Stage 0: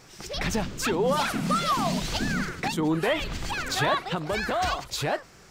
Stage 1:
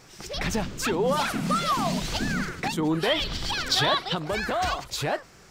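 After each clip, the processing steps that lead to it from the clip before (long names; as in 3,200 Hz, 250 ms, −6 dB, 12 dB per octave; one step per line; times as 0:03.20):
gain on a spectral selection 0:03.00–0:04.17, 2,900–5,900 Hz +8 dB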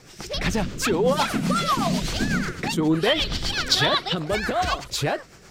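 rotating-speaker cabinet horn 8 Hz
level +5.5 dB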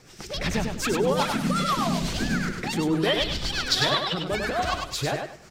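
repeating echo 99 ms, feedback 26%, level −5 dB
level −3.5 dB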